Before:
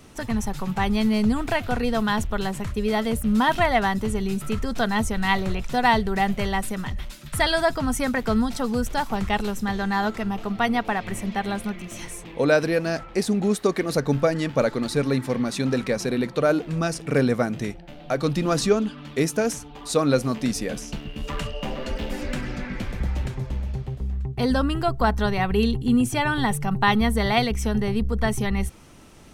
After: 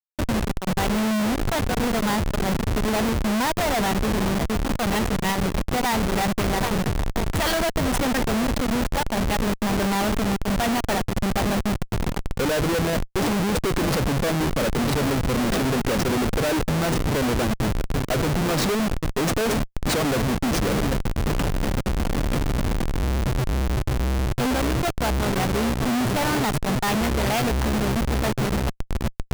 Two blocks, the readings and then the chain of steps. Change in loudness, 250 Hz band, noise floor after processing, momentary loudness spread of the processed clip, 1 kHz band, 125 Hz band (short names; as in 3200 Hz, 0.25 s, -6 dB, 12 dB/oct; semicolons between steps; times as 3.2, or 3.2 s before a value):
+0.5 dB, +0.5 dB, -39 dBFS, 4 LU, -0.5 dB, +3.5 dB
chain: swung echo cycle 1.305 s, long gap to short 1.5:1, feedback 47%, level -14 dB; Schmitt trigger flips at -27 dBFS; upward expander 1.5:1, over -35 dBFS; gain +2.5 dB